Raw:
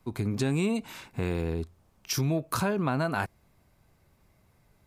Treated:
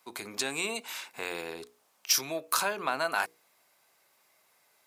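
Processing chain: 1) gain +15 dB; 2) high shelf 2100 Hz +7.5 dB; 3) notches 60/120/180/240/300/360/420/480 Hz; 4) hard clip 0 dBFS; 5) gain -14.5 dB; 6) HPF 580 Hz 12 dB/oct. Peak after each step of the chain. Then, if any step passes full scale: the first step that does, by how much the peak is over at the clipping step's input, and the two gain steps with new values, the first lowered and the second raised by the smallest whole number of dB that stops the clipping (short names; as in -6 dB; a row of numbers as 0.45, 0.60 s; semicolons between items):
+1.5, +5.5, +5.5, 0.0, -14.5, -10.5 dBFS; step 1, 5.5 dB; step 1 +9 dB, step 5 -8.5 dB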